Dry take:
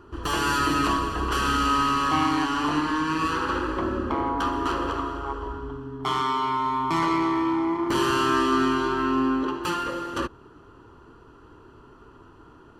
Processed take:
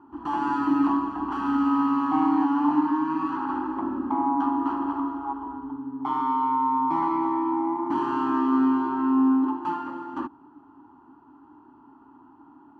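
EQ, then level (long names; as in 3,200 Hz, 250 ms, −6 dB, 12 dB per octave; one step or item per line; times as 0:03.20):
pair of resonant band-passes 490 Hz, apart 1.6 octaves
+7.5 dB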